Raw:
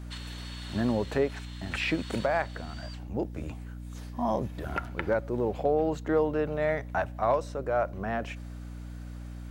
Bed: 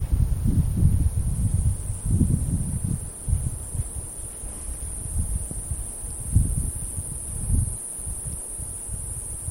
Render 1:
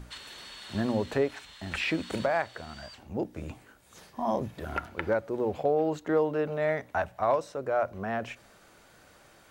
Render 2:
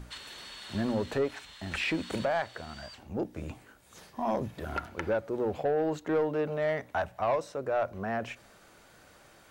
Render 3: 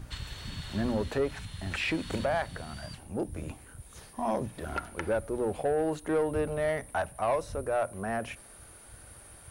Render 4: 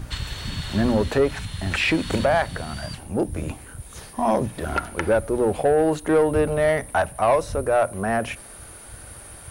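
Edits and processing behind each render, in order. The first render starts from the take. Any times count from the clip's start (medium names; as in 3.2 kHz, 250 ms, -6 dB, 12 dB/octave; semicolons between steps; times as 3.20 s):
hum notches 60/120/180/240/300 Hz
saturation -20.5 dBFS, distortion -16 dB
add bed -19.5 dB
trim +9.5 dB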